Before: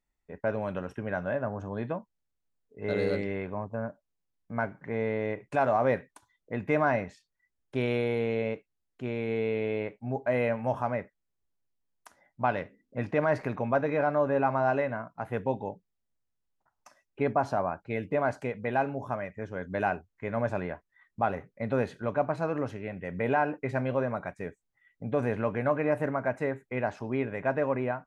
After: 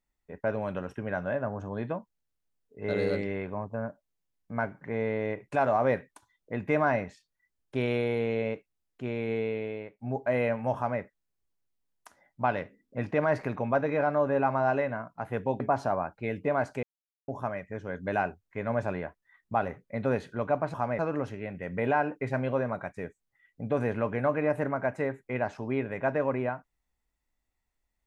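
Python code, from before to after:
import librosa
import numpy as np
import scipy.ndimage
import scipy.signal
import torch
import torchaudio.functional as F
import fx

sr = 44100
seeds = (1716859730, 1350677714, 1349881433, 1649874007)

y = fx.edit(x, sr, fx.fade_out_to(start_s=9.32, length_s=0.67, floor_db=-13.0),
    fx.duplicate(start_s=10.76, length_s=0.25, to_s=22.41),
    fx.cut(start_s=15.6, length_s=1.67),
    fx.silence(start_s=18.5, length_s=0.45), tone=tone)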